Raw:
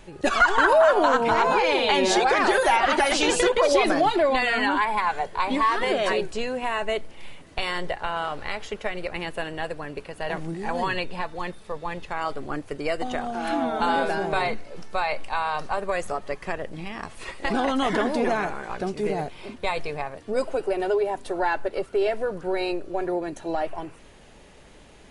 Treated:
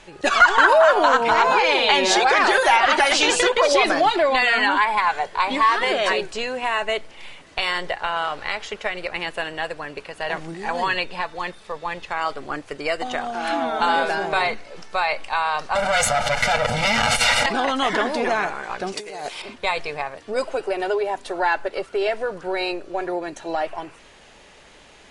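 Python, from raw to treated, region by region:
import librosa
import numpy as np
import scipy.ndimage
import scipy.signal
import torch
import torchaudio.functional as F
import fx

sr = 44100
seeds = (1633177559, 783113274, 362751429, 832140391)

y = fx.chain(x, sr, fx.lower_of_two(delay_ms=8.3),
    fx.comb(ms=1.4, depth=1.0),
    fx.env_flatten(amount_pct=100), at=(15.75, 17.46))
y = fx.chain(y, sr, fx.bass_treble(bass_db=-11, treble_db=10),
    fx.over_compress(threshold_db=-34.0, ratio=-1.0), at=(18.92, 19.42))
y = scipy.signal.sosfilt(scipy.signal.butter(2, 8100.0, 'lowpass', fs=sr, output='sos'), y)
y = fx.low_shelf(y, sr, hz=480.0, db=-11.5)
y = y * librosa.db_to_amplitude(6.5)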